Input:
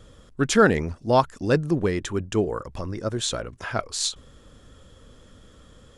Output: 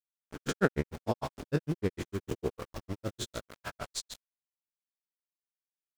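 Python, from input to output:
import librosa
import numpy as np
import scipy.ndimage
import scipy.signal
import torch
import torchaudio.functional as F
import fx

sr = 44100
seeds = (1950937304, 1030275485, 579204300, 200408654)

y = fx.spec_blur(x, sr, span_ms=144.0)
y = np.where(np.abs(y) >= 10.0 ** (-36.0 / 20.0), y, 0.0)
y = fx.granulator(y, sr, seeds[0], grain_ms=81.0, per_s=6.6, spray_ms=19.0, spread_st=0)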